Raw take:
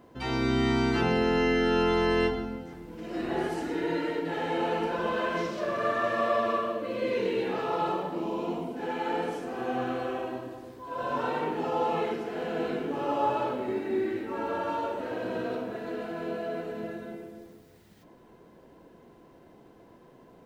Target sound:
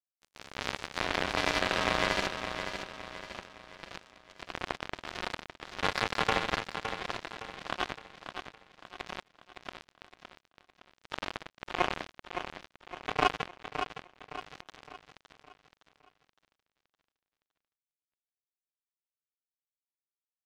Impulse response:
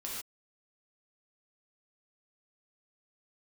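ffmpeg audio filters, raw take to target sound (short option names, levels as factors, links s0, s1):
-filter_complex "[0:a]aeval=exprs='val(0)*sin(2*PI*160*n/s)':c=same,asplit=2[s0][s1];[s1]aeval=exprs='sgn(val(0))*max(abs(val(0))-0.00668,0)':c=same,volume=0.282[s2];[s0][s2]amix=inputs=2:normalize=0,highpass=300,equalizer=f=660:t=q:w=4:g=6,equalizer=f=1100:t=q:w=4:g=4,equalizer=f=1600:t=q:w=4:g=6,equalizer=f=2200:t=q:w=4:g=6,lowpass=f=3200:w=0.5412,lowpass=f=3200:w=1.3066,asetrate=46722,aresample=44100,atempo=0.943874,acrusher=bits=2:mix=0:aa=0.5,aecho=1:1:563|1126|1689|2252|2815:0.398|0.171|0.0736|0.0317|0.0136"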